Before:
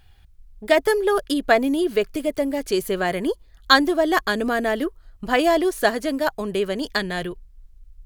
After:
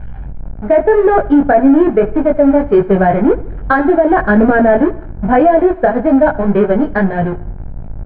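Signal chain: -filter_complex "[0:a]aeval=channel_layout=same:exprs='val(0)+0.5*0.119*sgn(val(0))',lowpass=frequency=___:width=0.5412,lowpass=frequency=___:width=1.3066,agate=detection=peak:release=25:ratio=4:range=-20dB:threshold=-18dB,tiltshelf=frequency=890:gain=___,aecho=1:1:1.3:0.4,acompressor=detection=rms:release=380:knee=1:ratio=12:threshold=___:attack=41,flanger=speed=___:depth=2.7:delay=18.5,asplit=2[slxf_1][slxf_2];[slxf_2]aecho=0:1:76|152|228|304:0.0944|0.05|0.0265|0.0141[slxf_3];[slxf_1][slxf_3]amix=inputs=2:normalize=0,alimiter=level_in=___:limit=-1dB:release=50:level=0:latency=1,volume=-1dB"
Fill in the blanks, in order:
1900, 1900, 6.5, -14dB, 1.8, 15dB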